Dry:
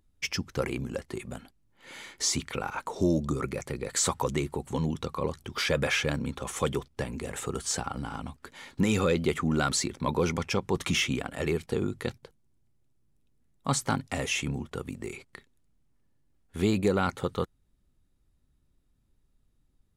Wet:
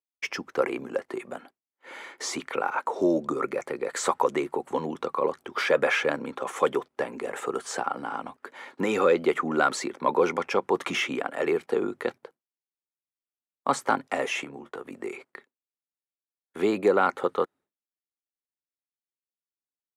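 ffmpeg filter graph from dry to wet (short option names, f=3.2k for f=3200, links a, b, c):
-filter_complex "[0:a]asettb=1/sr,asplit=3[a][b][c];[a]atrim=end=14.444[d];[b]atrim=start=14.44:end=14.91,asetpts=PTS-STARTPTS,afade=t=in:d=0.004:c=qsin,afade=t=out:st=0.466:d=0.004:c=qsin,agate=range=-33dB:threshold=-46dB:ratio=3:release=100:detection=peak,acompressor=threshold=-36dB:ratio=4:attack=3.2:release=140:knee=1:detection=peak,asplit=2[e][f];[f]adelay=14,volume=-8.5dB[g];[e][g]amix=inputs=2:normalize=0,atrim=end_sample=20727[h];[c]atrim=start=14.906[i];[d][h]acrossfade=d=0.004:c1=hsin:c2=qsin[j];[j][i]acrossfade=d=0.004:c1=qsin:c2=hsin,highpass=120,agate=range=-33dB:threshold=-51dB:ratio=3:detection=peak,acrossover=split=310 2100:gain=0.0631 1 0.2[k][l][m];[k][l][m]amix=inputs=3:normalize=0,volume=7.5dB"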